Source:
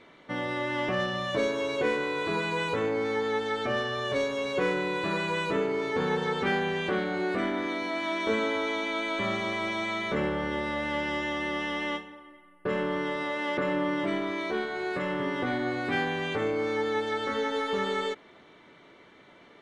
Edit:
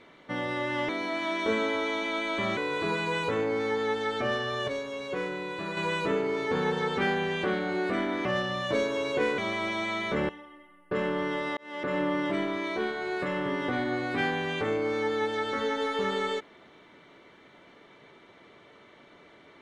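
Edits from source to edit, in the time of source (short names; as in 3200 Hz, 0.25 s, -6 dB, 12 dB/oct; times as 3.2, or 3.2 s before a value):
0.89–2.02 swap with 7.7–9.38
4.13–5.22 gain -5.5 dB
10.29–12.03 cut
13.31–13.72 fade in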